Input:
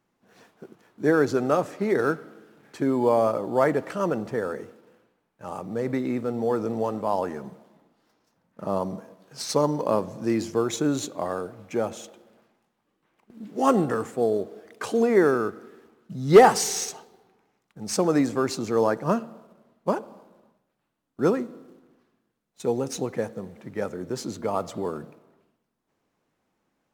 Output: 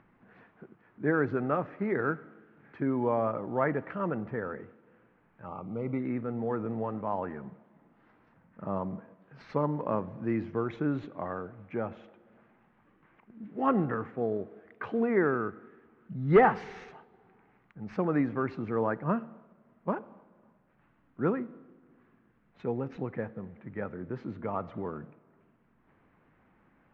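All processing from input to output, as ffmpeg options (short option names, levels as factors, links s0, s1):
-filter_complex "[0:a]asettb=1/sr,asplit=3[s0][s1][s2];[s0]atrim=end=5.474[s3];[s1]atrim=start=5.47:end=6,asetpts=PTS-STARTPTS,afade=t=in:d=0.004:c=qsin,afade=t=out:st=0.526:d=0.004:c=qsin,acrusher=bits=8:mode=log:mix=0:aa=0.000001,asuperstop=centerf=1700:order=8:qfactor=2.8[s4];[s2]atrim=start=5.996[s5];[s3][s4]acrossfade=d=0.004:c1=hsin:c2=qsin[s6];[s6][s5]acrossfade=d=0.004:c1=qsin:c2=hsin,lowpass=f=2100:w=0.5412,lowpass=f=2100:w=1.3066,equalizer=f=530:t=o:w=2.5:g=-8.5,acompressor=mode=upward:threshold=0.00282:ratio=2.5"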